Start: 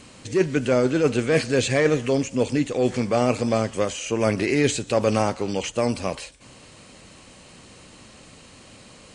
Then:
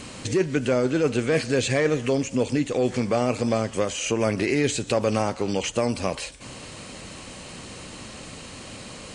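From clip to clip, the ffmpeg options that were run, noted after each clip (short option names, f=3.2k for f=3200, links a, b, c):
-af "acompressor=threshold=-34dB:ratio=2,volume=7.5dB"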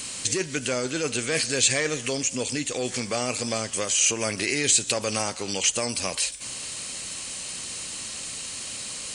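-af "crystalizer=i=9:c=0,volume=-8dB"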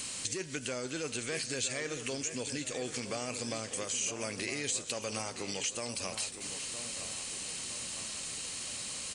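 -filter_complex "[0:a]acompressor=threshold=-31dB:ratio=2.5,asplit=2[a][b];[b]adelay=963,lowpass=f=3.7k:p=1,volume=-10dB,asplit=2[c][d];[d]adelay=963,lowpass=f=3.7k:p=1,volume=0.52,asplit=2[e][f];[f]adelay=963,lowpass=f=3.7k:p=1,volume=0.52,asplit=2[g][h];[h]adelay=963,lowpass=f=3.7k:p=1,volume=0.52,asplit=2[i][j];[j]adelay=963,lowpass=f=3.7k:p=1,volume=0.52,asplit=2[k][l];[l]adelay=963,lowpass=f=3.7k:p=1,volume=0.52[m];[a][c][e][g][i][k][m]amix=inputs=7:normalize=0,volume=-4.5dB"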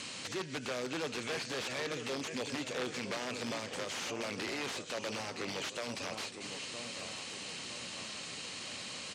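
-af "aeval=exprs='(mod(28.2*val(0)+1,2)-1)/28.2':c=same,highpass=120,lowpass=4.3k,volume=2dB"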